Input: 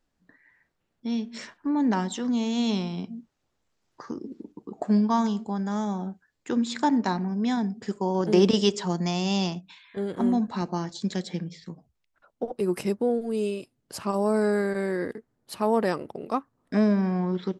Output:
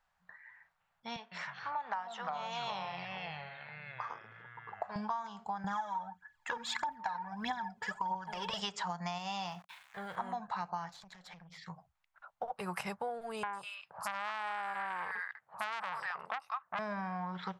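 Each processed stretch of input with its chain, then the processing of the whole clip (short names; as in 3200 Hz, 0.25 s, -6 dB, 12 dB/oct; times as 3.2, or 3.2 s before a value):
1.16–4.96 BPF 580–5400 Hz + tilt shelf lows +4 dB, about 830 Hz + echoes that change speed 0.154 s, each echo -4 st, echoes 3, each echo -6 dB
5.64–8.6 small resonant body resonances 280/910/1700/3300 Hz, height 13 dB, ringing for 90 ms + compressor, threshold -18 dBFS + phaser 1.6 Hz, delay 2.3 ms, feedback 68%
9.18–10.16 resonator 70 Hz, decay 0.19 s + sample gate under -53 dBFS
10.91–11.58 compressor 12:1, threshold -41 dBFS + tube stage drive 39 dB, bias 0.55 + Doppler distortion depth 0.15 ms
13.43–16.79 HPF 170 Hz 6 dB/oct + three bands offset in time lows, highs, mids 0.1/0.2 s, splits 1100/4800 Hz + core saturation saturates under 2700 Hz
whole clip: EQ curve 180 Hz 0 dB, 280 Hz -22 dB, 800 Hz +15 dB, 1400 Hz +15 dB, 5300 Hz +3 dB; compressor 12:1, threshold -26 dBFS; gain -8 dB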